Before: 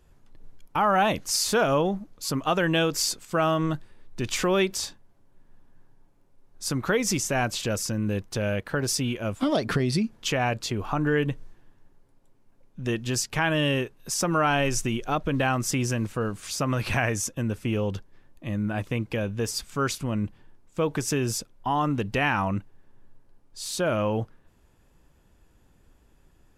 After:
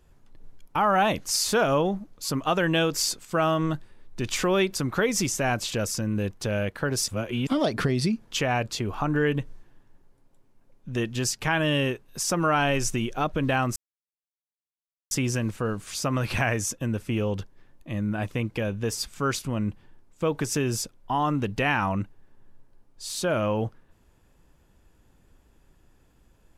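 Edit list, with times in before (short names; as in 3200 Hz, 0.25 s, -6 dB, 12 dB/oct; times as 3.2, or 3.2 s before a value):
4.76–6.67 cut
8.99–9.38 reverse
15.67 insert silence 1.35 s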